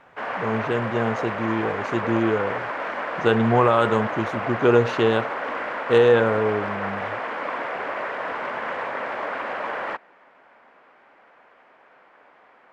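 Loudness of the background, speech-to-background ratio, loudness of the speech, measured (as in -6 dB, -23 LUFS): -28.5 LUFS, 6.5 dB, -22.0 LUFS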